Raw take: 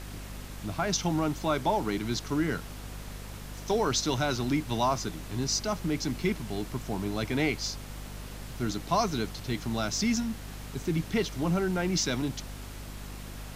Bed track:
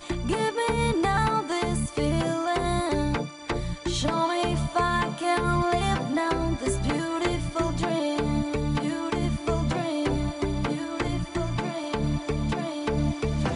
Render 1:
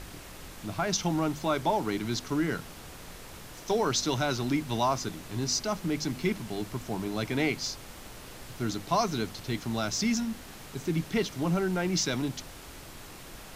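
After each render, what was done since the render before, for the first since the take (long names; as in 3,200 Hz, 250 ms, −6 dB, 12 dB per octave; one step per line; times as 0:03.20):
hum removal 50 Hz, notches 5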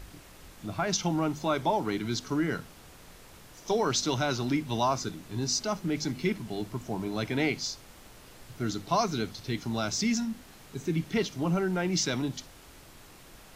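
noise reduction from a noise print 6 dB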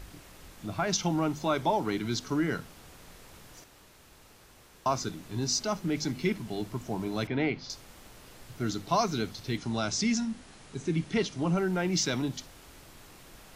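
0:03.64–0:04.86: fill with room tone
0:07.27–0:07.70: high-frequency loss of the air 270 metres
0:09.57–0:11.58: linear-phase brick-wall low-pass 11,000 Hz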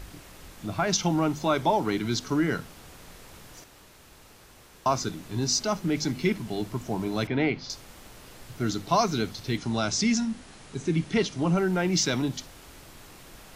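level +3.5 dB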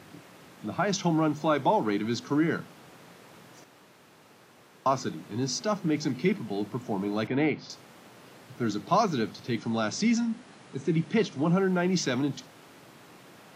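high-pass filter 130 Hz 24 dB per octave
high-shelf EQ 3,800 Hz −10 dB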